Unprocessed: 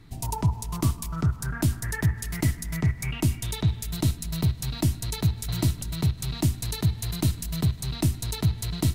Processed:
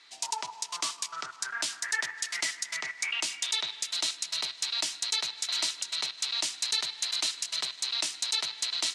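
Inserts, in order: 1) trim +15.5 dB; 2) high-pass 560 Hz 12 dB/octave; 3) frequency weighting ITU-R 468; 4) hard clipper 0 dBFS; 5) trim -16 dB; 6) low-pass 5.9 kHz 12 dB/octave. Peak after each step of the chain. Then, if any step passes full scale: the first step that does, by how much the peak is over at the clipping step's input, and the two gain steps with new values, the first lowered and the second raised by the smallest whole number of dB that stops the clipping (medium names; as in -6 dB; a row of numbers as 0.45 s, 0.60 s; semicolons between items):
+3.5 dBFS, -2.0 dBFS, +6.5 dBFS, 0.0 dBFS, -16.0 dBFS, -16.5 dBFS; step 1, 6.5 dB; step 1 +8.5 dB, step 5 -9 dB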